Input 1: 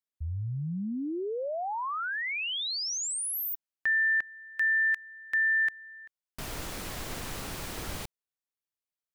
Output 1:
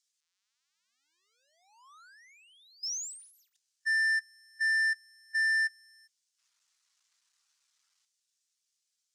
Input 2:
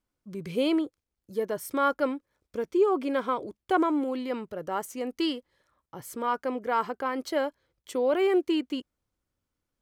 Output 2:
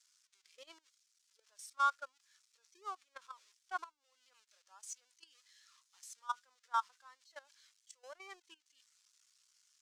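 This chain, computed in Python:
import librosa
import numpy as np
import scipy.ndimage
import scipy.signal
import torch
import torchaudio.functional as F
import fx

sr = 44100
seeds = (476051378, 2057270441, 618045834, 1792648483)

y = x + 0.5 * 10.0 ** (-19.0 / 20.0) * np.diff(np.sign(x), prepend=np.sign(x[:1]))
y = fx.level_steps(y, sr, step_db=12)
y = scipy.signal.sosfilt(scipy.signal.cheby1(2, 1.0, [1100.0, 6400.0], 'bandpass', fs=sr, output='sos'), y)
y = fx.power_curve(y, sr, exponent=1.4)
y = fx.spectral_expand(y, sr, expansion=1.5)
y = y * 10.0 ** (-2.0 / 20.0)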